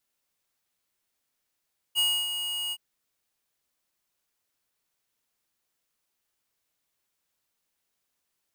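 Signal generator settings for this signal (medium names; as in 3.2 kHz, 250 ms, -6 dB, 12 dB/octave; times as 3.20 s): ADSR square 2.88 kHz, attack 38 ms, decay 280 ms, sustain -8.5 dB, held 0.77 s, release 50 ms -23 dBFS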